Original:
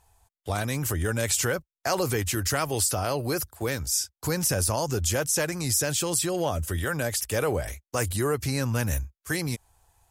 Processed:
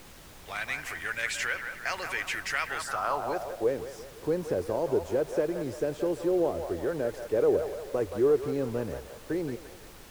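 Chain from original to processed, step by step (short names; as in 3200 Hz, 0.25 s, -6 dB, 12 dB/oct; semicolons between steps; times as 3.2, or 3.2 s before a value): band-limited delay 0.173 s, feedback 50%, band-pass 1100 Hz, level -6 dB; band-pass sweep 2100 Hz -> 410 Hz, 2.66–3.78; added noise pink -55 dBFS; gain +5.5 dB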